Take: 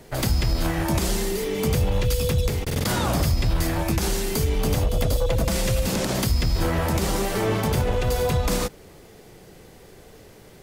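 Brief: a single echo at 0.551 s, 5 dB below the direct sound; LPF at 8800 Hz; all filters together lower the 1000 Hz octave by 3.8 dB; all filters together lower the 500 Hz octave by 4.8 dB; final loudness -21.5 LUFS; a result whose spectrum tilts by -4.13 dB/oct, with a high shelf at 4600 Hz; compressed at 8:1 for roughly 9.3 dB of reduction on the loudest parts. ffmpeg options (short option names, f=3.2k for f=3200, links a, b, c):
-af "lowpass=8.8k,equalizer=f=500:t=o:g=-5,equalizer=f=1k:t=o:g=-3.5,highshelf=f=4.6k:g=7,acompressor=threshold=-27dB:ratio=8,aecho=1:1:551:0.562,volume=9dB"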